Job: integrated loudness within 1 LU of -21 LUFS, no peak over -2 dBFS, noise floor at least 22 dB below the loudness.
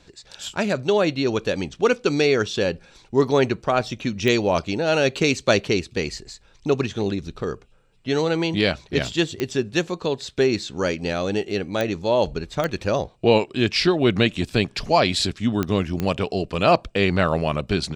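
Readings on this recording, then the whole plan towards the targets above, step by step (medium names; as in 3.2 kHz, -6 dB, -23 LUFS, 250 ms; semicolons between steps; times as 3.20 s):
clicks found 6; loudness -22.5 LUFS; peak level -4.5 dBFS; loudness target -21.0 LUFS
-> de-click; trim +1.5 dB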